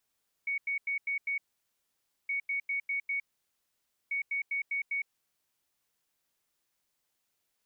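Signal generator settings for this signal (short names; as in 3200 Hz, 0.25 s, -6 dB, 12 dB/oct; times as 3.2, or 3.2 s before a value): beep pattern sine 2230 Hz, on 0.11 s, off 0.09 s, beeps 5, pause 0.91 s, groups 3, -29 dBFS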